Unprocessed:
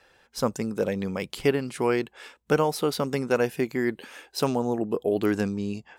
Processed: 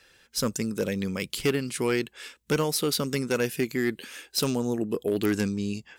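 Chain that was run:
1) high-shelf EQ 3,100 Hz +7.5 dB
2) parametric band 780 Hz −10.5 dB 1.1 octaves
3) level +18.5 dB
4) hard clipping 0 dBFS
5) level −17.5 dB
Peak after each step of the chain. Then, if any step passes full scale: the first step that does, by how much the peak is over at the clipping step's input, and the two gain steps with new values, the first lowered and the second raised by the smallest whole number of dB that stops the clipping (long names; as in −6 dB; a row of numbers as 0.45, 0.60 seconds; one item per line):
−8.5, −9.5, +9.0, 0.0, −17.5 dBFS
step 3, 9.0 dB
step 3 +9.5 dB, step 5 −8.5 dB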